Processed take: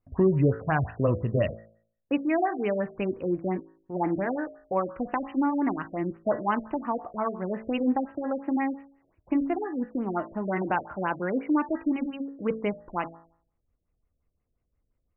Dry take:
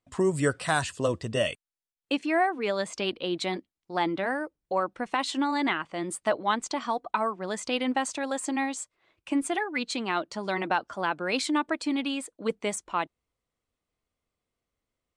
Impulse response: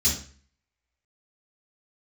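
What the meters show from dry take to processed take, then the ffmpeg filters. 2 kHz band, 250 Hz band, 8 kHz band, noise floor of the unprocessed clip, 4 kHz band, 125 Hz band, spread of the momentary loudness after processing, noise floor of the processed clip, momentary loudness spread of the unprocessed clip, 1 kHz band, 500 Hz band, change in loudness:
-5.5 dB, +3.5 dB, under -40 dB, under -85 dBFS, under -15 dB, +7.5 dB, 7 LU, -78 dBFS, 6 LU, -1.5 dB, +1.0 dB, +0.5 dB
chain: -af "aemphasis=mode=reproduction:type=bsi,bandreject=f=55.35:t=h:w=4,bandreject=f=110.7:t=h:w=4,bandreject=f=166.05:t=h:w=4,bandreject=f=221.4:t=h:w=4,bandreject=f=276.75:t=h:w=4,bandreject=f=332.1:t=h:w=4,bandreject=f=387.45:t=h:w=4,bandreject=f=442.8:t=h:w=4,bandreject=f=498.15:t=h:w=4,bandreject=f=553.5:t=h:w=4,bandreject=f=608.85:t=h:w=4,bandreject=f=664.2:t=h:w=4,bandreject=f=719.55:t=h:w=4,bandreject=f=774.9:t=h:w=4,bandreject=f=830.25:t=h:w=4,bandreject=f=885.6:t=h:w=4,bandreject=f=940.95:t=h:w=4,bandreject=f=996.3:t=h:w=4,bandreject=f=1051.65:t=h:w=4,bandreject=f=1107:t=h:w=4,bandreject=f=1162.35:t=h:w=4,bandreject=f=1217.7:t=h:w=4,bandreject=f=1273.05:t=h:w=4,bandreject=f=1328.4:t=h:w=4,bandreject=f=1383.75:t=h:w=4,bandreject=f=1439.1:t=h:w=4,bandreject=f=1494.45:t=h:w=4,bandreject=f=1549.8:t=h:w=4,bandreject=f=1605.15:t=h:w=4,bandreject=f=1660.5:t=h:w=4,bandreject=f=1715.85:t=h:w=4,bandreject=f=1771.2:t=h:w=4,bandreject=f=1826.55:t=h:w=4,bandreject=f=1881.9:t=h:w=4,bandreject=f=1937.25:t=h:w=4,afftfilt=real='re*lt(b*sr/1024,650*pow(3100/650,0.5+0.5*sin(2*PI*5.7*pts/sr)))':imag='im*lt(b*sr/1024,650*pow(3100/650,0.5+0.5*sin(2*PI*5.7*pts/sr)))':win_size=1024:overlap=0.75"

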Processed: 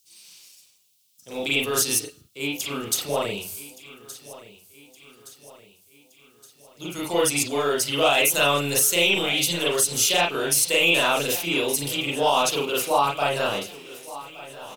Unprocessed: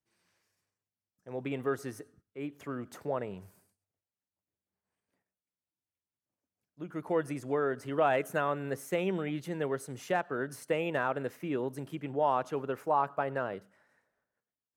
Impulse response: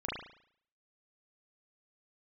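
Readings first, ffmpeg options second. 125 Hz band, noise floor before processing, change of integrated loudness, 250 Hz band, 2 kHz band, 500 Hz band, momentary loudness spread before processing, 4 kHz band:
+5.5 dB, under -85 dBFS, +12.0 dB, +6.0 dB, +14.5 dB, +7.5 dB, 13 LU, +28.0 dB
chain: -filter_complex "[0:a]acrossover=split=400[s0][s1];[s0]asoftclip=type=tanh:threshold=0.0126[s2];[s2][s1]amix=inputs=2:normalize=0,aexciter=amount=10.5:drive=9.4:freq=2800,aecho=1:1:1169|2338|3507|4676|5845:0.126|0.068|0.0367|0.0198|0.0107[s3];[1:a]atrim=start_sample=2205,afade=t=out:st=0.14:d=0.01,atrim=end_sample=6615[s4];[s3][s4]afir=irnorm=-1:irlink=0,alimiter=level_in=4.73:limit=0.891:release=50:level=0:latency=1,volume=0.376"

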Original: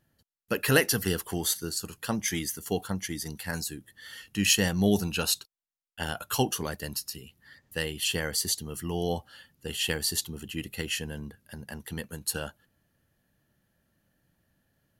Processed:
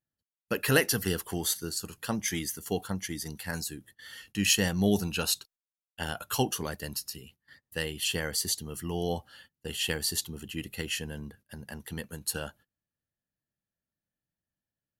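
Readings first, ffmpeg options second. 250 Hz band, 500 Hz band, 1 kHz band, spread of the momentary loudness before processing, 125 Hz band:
-1.5 dB, -1.5 dB, -1.5 dB, 16 LU, -1.5 dB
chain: -af "agate=range=0.1:threshold=0.00224:ratio=16:detection=peak,volume=0.841"

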